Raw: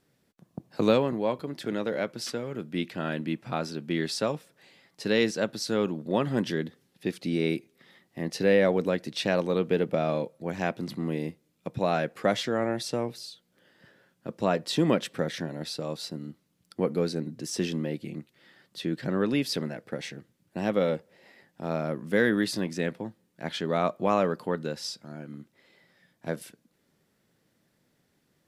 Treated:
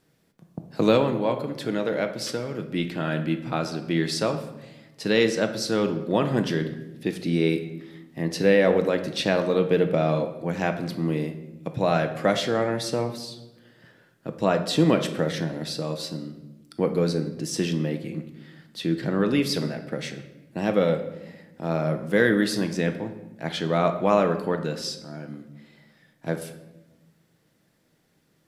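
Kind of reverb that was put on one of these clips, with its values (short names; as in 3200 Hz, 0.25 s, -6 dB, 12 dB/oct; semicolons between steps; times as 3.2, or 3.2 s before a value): shoebox room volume 490 m³, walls mixed, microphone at 0.58 m; gain +3 dB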